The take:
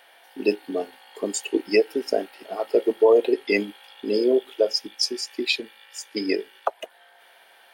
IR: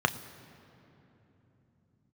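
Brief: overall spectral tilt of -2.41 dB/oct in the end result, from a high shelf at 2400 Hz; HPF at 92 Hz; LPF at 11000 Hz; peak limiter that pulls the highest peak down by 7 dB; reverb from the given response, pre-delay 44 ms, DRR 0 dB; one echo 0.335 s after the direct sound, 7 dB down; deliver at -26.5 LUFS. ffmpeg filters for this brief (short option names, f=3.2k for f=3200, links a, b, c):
-filter_complex "[0:a]highpass=92,lowpass=11k,highshelf=f=2.4k:g=5.5,alimiter=limit=-12dB:level=0:latency=1,aecho=1:1:335:0.447,asplit=2[a][b];[1:a]atrim=start_sample=2205,adelay=44[c];[b][c]afir=irnorm=-1:irlink=0,volume=-12dB[d];[a][d]amix=inputs=2:normalize=0,volume=-3.5dB"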